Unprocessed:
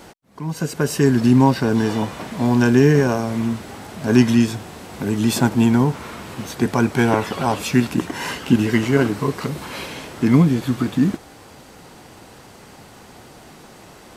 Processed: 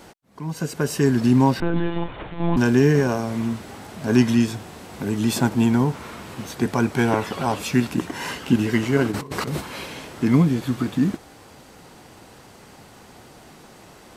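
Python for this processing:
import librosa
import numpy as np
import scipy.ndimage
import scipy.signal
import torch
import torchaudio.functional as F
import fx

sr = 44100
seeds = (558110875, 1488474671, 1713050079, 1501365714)

y = fx.lpc_monotone(x, sr, seeds[0], pitch_hz=170.0, order=16, at=(1.6, 2.57))
y = fx.over_compress(y, sr, threshold_db=-27.0, ratio=-0.5, at=(9.11, 9.6), fade=0.02)
y = F.gain(torch.from_numpy(y), -3.0).numpy()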